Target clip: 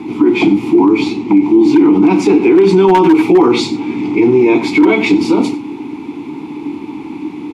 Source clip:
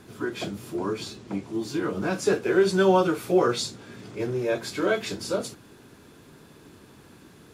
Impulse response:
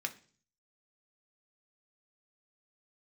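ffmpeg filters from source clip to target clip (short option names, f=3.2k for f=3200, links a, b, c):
-filter_complex "[0:a]asplit=3[a][b][c];[a]bandpass=f=300:t=q:w=8,volume=0dB[d];[b]bandpass=f=870:t=q:w=8,volume=-6dB[e];[c]bandpass=f=2.24k:t=q:w=8,volume=-9dB[f];[d][e][f]amix=inputs=3:normalize=0,aeval=exprs='0.0501*(abs(mod(val(0)/0.0501+3,4)-2)-1)':c=same,aecho=1:1:92:0.141,alimiter=level_in=36dB:limit=-1dB:release=50:level=0:latency=1,volume=-1dB"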